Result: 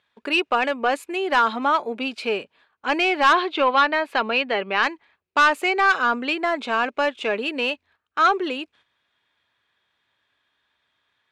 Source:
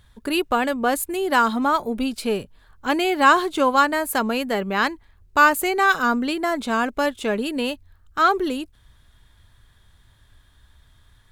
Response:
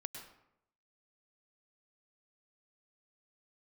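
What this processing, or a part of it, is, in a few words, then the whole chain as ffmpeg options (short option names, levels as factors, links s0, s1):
intercom: -filter_complex "[0:a]highpass=380,lowpass=4100,equalizer=f=2500:t=o:w=0.41:g=8,asoftclip=type=tanh:threshold=0.299,agate=range=0.316:threshold=0.00178:ratio=16:detection=peak,asettb=1/sr,asplit=3[s0][s1][s2];[s0]atrim=end=3.334[s3];[s1]atrim=start=3.33:end=4.83,asetpts=PTS-STARTPTS,afade=t=in:d=0.004:c=qsin,afade=t=out:st=1.496:d=0.004:c=qsin,highshelf=f=5600:t=q:w=1.5:g=-10.5[s4];[s2]atrim=start=4.826[s5];[s3][s4]acrossfade=d=0.004:c1=hsin:c2=qsin[s6];[s6][s5]acrossfade=d=0.004:c1=qsin:c2=hsin,volume=1.19"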